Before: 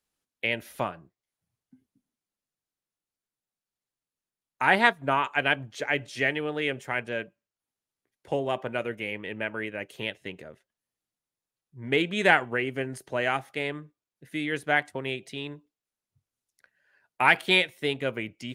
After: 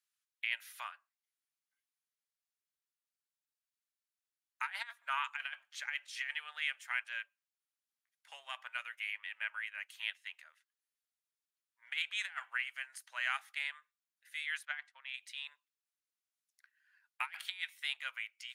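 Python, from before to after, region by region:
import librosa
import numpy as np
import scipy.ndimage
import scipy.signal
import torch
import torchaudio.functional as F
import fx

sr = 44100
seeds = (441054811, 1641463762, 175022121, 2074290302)

y = fx.chain(x, sr, fx.lowpass(hz=4600.0, slope=12),
    fx.upward_expand(threshold_db=-36.0, expansion=1.5), at=(14.65, 15.14))
y = scipy.signal.sosfilt(scipy.signal.cheby2(4, 60, 360.0, 'highpass', fs=sr, output='sos'), y)
y = fx.over_compress(y, sr, threshold_db=-29.0, ratio=-0.5)
y = y * librosa.db_to_amplitude(-7.5)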